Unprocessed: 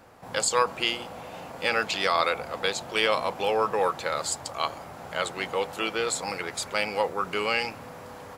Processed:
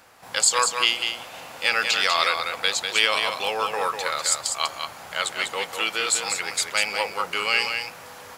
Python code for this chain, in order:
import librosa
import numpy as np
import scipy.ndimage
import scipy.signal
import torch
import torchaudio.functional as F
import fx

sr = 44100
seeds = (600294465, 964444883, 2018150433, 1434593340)

p1 = fx.tilt_shelf(x, sr, db=-8.0, hz=970.0)
y = p1 + fx.echo_single(p1, sr, ms=196, db=-6.0, dry=0)